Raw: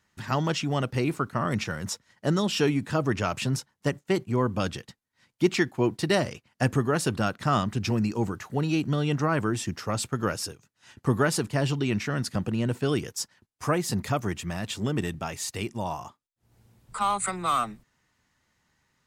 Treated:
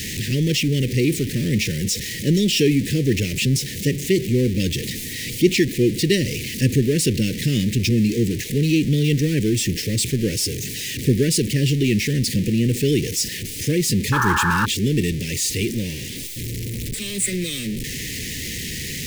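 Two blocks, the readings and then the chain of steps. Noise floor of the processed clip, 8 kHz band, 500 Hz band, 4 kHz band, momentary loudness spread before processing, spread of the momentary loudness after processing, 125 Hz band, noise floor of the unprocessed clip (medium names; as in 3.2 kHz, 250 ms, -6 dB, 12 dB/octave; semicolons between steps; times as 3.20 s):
-30 dBFS, +11.5 dB, +5.0 dB, +10.5 dB, 8 LU, 9 LU, +8.5 dB, -77 dBFS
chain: jump at every zero crossing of -27 dBFS; inverse Chebyshev band-stop 660–1400 Hz, stop band 40 dB; painted sound noise, 14.12–14.66 s, 820–1800 Hz -26 dBFS; trim +5.5 dB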